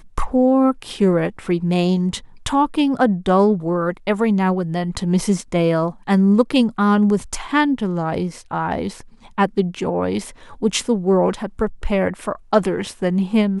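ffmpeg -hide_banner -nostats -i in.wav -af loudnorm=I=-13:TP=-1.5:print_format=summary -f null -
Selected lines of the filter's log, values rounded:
Input Integrated:    -19.4 LUFS
Input True Peak:      -1.8 dBTP
Input LRA:             3.2 LU
Input Threshold:     -29.5 LUFS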